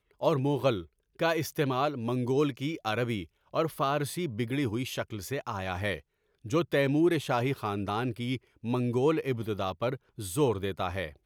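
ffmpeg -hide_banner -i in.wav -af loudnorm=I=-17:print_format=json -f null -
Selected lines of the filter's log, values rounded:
"input_i" : "-30.5",
"input_tp" : "-13.1",
"input_lra" : "1.7",
"input_thresh" : "-40.7",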